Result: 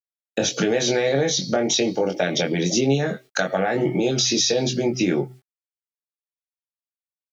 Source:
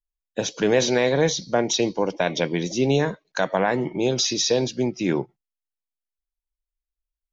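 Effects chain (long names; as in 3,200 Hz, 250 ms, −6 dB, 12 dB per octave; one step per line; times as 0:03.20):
camcorder AGC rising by 12 dB per second
high-pass filter 91 Hz 24 dB per octave
hum removal 127.4 Hz, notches 3
noise gate −42 dBFS, range −36 dB
in parallel at +3 dB: brickwall limiter −19 dBFS, peak gain reduction 11.5 dB
on the sum: downward compressor 6 to 1, threshold −18 dBFS, peak gain reduction 7.5 dB
bit reduction 11 bits
Butterworth band-reject 1,000 Hz, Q 3.8
double-tracking delay 22 ms −4.5 dB
one half of a high-frequency compander encoder only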